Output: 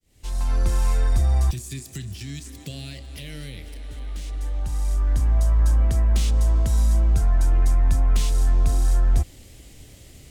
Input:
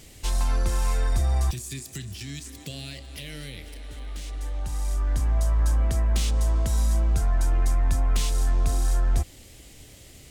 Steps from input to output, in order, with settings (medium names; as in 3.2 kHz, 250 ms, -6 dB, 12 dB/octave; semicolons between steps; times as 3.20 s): fade-in on the opening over 0.65 s; bass shelf 320 Hz +5 dB; trim -1 dB